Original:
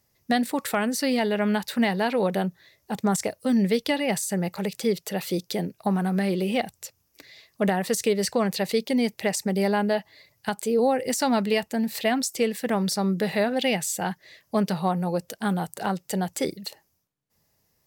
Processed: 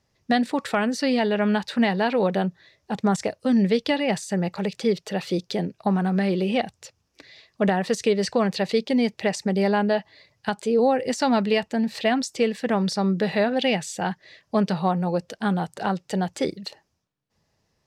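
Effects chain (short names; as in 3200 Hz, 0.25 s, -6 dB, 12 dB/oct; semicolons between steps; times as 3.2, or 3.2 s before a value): LPF 5100 Hz 12 dB/oct; notch 2100 Hz, Q 23; gain +2 dB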